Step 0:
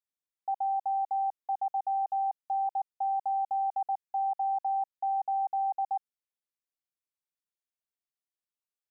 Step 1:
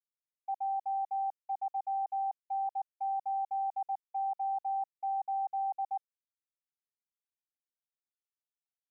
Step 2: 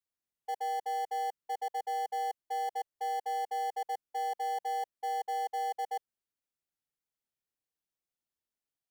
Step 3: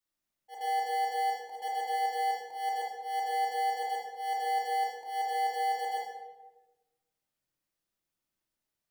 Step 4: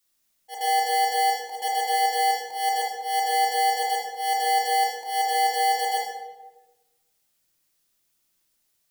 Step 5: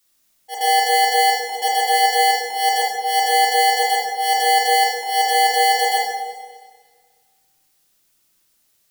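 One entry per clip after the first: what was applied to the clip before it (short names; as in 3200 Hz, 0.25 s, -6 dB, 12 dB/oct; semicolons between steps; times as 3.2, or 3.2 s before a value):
expander -30 dBFS; gain -3.5 dB
steep high-pass 650 Hz 36 dB/oct; in parallel at -9 dB: sample-and-hold 35×
auto swell 0.133 s; shoebox room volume 610 m³, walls mixed, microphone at 2.6 m
high shelf 2900 Hz +11 dB; gain +7 dB
Schroeder reverb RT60 1.7 s, combs from 31 ms, DRR 9 dB; gain +7.5 dB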